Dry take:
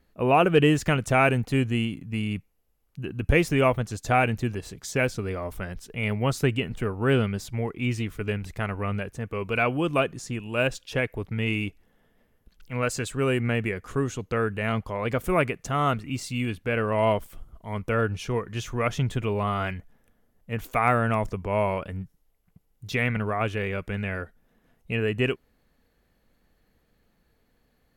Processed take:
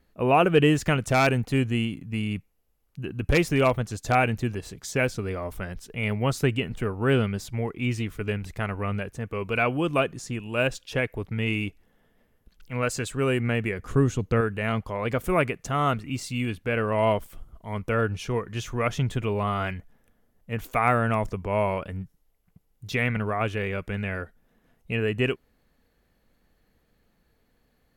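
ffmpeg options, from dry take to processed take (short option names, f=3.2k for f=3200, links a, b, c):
-filter_complex "[0:a]asettb=1/sr,asplit=3[a][b][c];[a]atrim=end=1.094[d];[b]atrim=start=1.09:end=4.15,asetpts=PTS-STARTPTS,afade=t=in:d=0.004:c=qsin,afade=t=out:st=3.056:d=0.004:c=qsin,aeval=exprs='0.237*(abs(mod(val(0)/0.237+3,4)-2)-1)':c=same[e];[c]atrim=start=4.146[f];[d][e]acrossfade=d=0.004:c1=hsin:c2=qsin[g];[g][f]acrossfade=d=0.004:c1=qsin:c2=hsin,asettb=1/sr,asplit=3[h][i][j];[h]atrim=end=13.794[k];[i]atrim=start=13.79:end=14.41,asetpts=PTS-STARTPTS,afade=t=in:d=0.004:c=qsin,afade=t=out:st=0.616:d=0.004:c=qsin,lowshelf=f=330:g=8.5[l];[j]atrim=start=14.406[m];[k][l]acrossfade=d=0.004:c1=hsin:c2=qsin[n];[n][m]acrossfade=d=0.004:c1=qsin:c2=hsin"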